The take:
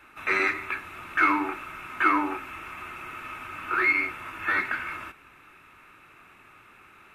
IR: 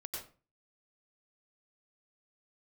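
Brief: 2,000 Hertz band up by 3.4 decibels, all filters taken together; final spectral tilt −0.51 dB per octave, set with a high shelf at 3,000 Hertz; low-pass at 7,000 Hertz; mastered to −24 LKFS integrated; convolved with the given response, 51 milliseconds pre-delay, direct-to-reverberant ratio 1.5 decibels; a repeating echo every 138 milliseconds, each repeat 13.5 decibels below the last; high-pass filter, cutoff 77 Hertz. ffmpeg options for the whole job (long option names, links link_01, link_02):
-filter_complex "[0:a]highpass=77,lowpass=7000,equalizer=frequency=2000:width_type=o:gain=3,highshelf=frequency=3000:gain=3,aecho=1:1:138|276:0.211|0.0444,asplit=2[link_01][link_02];[1:a]atrim=start_sample=2205,adelay=51[link_03];[link_02][link_03]afir=irnorm=-1:irlink=0,volume=-0.5dB[link_04];[link_01][link_04]amix=inputs=2:normalize=0,volume=-2.5dB"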